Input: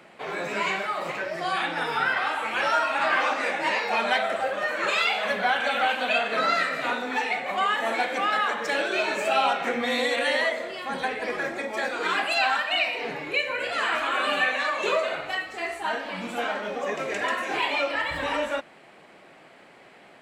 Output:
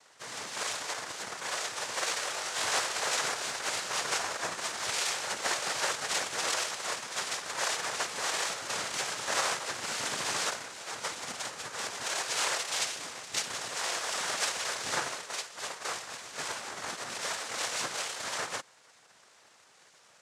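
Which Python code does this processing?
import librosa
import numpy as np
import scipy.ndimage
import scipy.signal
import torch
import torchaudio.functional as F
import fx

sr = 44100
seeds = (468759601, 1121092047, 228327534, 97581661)

y = np.r_[np.sort(x[:len(x) // 16 * 16].reshape(-1, 16), axis=1).ravel(), x[len(x) // 16 * 16:]]
y = scipy.signal.sosfilt(scipy.signal.butter(4, 540.0, 'highpass', fs=sr, output='sos'), y)
y = fx.noise_vocoder(y, sr, seeds[0], bands=3)
y = fx.room_flutter(y, sr, wall_m=3.5, rt60_s=0.21, at=(2.32, 2.79))
y = y * 10.0 ** (-7.0 / 20.0)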